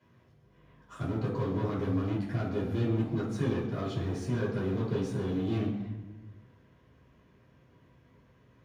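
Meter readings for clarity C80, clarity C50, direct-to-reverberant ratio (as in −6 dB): 6.5 dB, 3.5 dB, −8.5 dB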